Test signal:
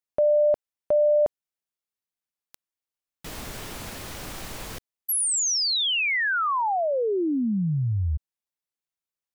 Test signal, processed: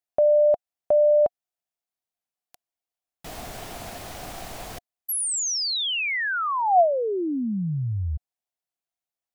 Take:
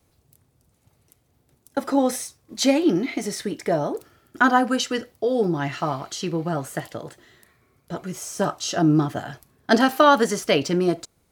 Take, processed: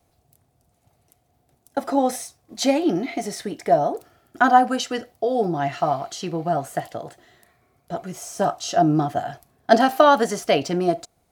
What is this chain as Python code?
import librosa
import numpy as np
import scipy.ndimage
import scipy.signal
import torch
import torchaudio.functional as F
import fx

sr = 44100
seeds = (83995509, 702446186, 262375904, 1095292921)

y = fx.peak_eq(x, sr, hz=710.0, db=12.5, octaves=0.33)
y = y * 10.0 ** (-2.0 / 20.0)